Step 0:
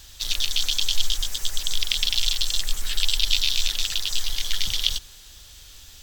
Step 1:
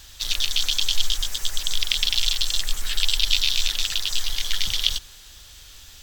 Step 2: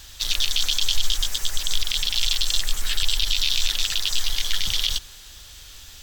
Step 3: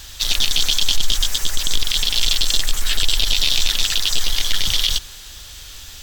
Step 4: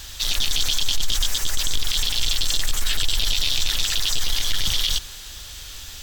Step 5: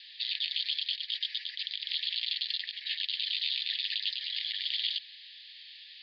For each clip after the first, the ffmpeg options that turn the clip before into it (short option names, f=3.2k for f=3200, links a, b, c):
-af "equalizer=f=1.5k:t=o:w=2.1:g=3"
-af "alimiter=limit=-10dB:level=0:latency=1:release=33,volume=2dB"
-af "asoftclip=type=tanh:threshold=-11.5dB,volume=6dB"
-af "alimiter=limit=-12dB:level=0:latency=1:release=15"
-af "asuperpass=centerf=2900:order=20:qfactor=0.96,volume=-7.5dB"